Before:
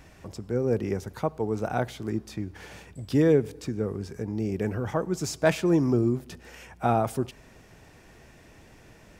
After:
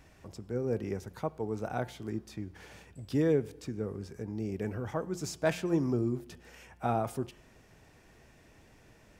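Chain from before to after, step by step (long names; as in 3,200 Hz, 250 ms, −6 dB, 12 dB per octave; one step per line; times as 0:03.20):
hum removal 176.1 Hz, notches 19
level −6.5 dB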